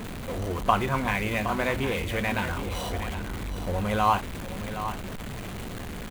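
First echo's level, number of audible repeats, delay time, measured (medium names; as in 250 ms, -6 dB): -10.5 dB, 1, 767 ms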